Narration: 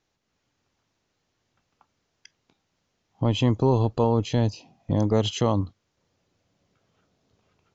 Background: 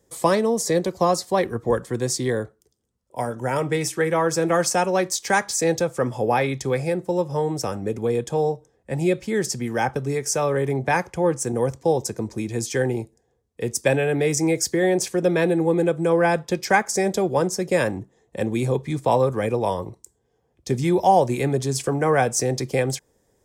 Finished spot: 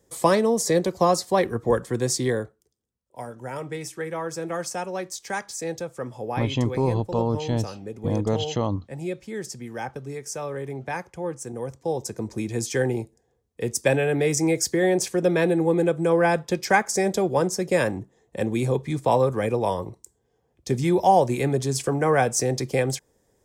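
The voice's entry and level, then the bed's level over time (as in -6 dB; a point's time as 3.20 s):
3.15 s, -2.5 dB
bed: 2.27 s 0 dB
2.88 s -9.5 dB
11.65 s -9.5 dB
12.36 s -1 dB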